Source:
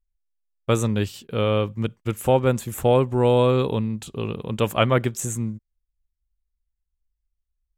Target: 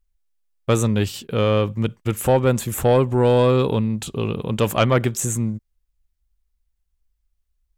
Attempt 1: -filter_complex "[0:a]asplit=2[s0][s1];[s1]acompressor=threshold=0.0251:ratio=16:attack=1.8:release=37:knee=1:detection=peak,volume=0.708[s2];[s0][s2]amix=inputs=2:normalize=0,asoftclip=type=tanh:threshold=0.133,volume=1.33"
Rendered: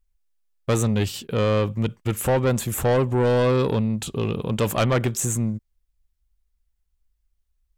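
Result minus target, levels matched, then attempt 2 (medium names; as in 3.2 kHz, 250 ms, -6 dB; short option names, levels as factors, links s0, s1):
saturation: distortion +10 dB
-filter_complex "[0:a]asplit=2[s0][s1];[s1]acompressor=threshold=0.0251:ratio=16:attack=1.8:release=37:knee=1:detection=peak,volume=0.708[s2];[s0][s2]amix=inputs=2:normalize=0,asoftclip=type=tanh:threshold=0.335,volume=1.33"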